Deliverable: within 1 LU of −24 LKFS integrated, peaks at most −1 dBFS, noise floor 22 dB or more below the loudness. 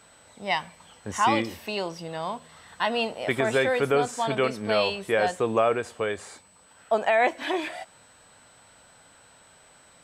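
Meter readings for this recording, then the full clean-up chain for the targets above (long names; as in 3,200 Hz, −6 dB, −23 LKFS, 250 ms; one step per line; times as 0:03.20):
interfering tone 8,000 Hz; level of the tone −57 dBFS; integrated loudness −26.0 LKFS; sample peak −11.5 dBFS; target loudness −24.0 LKFS
→ notch filter 8,000 Hz, Q 30
level +2 dB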